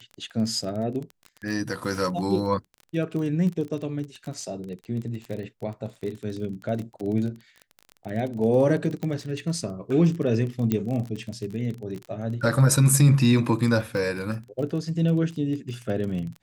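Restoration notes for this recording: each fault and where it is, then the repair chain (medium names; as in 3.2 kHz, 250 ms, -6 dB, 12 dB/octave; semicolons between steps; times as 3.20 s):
crackle 26 per s -31 dBFS
9.03 s: pop -19 dBFS
10.72 s: pop -11 dBFS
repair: de-click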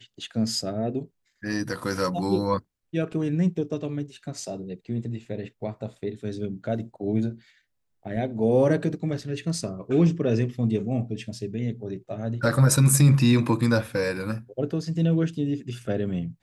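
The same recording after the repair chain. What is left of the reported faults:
nothing left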